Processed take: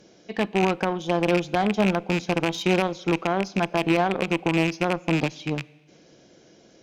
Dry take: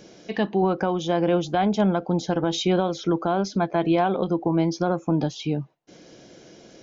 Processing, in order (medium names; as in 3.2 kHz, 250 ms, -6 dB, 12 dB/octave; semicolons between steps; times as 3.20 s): rattle on loud lows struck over -27 dBFS, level -16 dBFS; Schroeder reverb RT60 1.4 s, combs from 31 ms, DRR 17.5 dB; Chebyshev shaper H 7 -23 dB, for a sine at -7.5 dBFS